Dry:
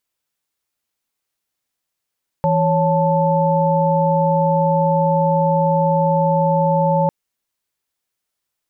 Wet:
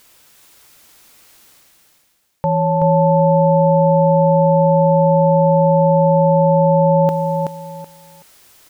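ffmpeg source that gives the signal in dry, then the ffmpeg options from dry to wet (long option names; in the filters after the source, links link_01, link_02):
-f lavfi -i "aevalsrc='0.133*(sin(2*PI*164.81*t)+sin(2*PI*554.37*t)+sin(2*PI*880*t))':duration=4.65:sample_rate=44100"
-af "areverse,acompressor=mode=upward:threshold=-26dB:ratio=2.5,areverse,aecho=1:1:377|754|1131:0.631|0.151|0.0363"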